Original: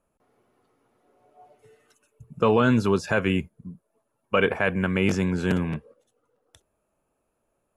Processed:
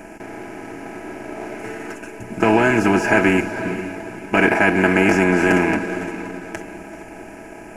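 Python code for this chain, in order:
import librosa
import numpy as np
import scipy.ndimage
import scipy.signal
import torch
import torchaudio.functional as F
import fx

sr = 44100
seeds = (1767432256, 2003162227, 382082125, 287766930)

p1 = fx.bin_compress(x, sr, power=0.4)
p2 = fx.fixed_phaser(p1, sr, hz=750.0, stages=8)
p3 = p2 + 0.64 * np.pad(p2, (int(6.1 * sr / 1000.0), 0))[:len(p2)]
p4 = p3 + fx.echo_diffused(p3, sr, ms=454, feedback_pct=44, wet_db=-11.0, dry=0)
p5 = fx.dynamic_eq(p4, sr, hz=1200.0, q=3.1, threshold_db=-48.0, ratio=4.0, max_db=6)
p6 = fx.backlash(p5, sr, play_db=-29.5)
p7 = p5 + (p6 * 10.0 ** (-6.0 / 20.0))
p8 = fx.notch(p7, sr, hz=1400.0, q=5.1)
y = p8 * 10.0 ** (2.0 / 20.0)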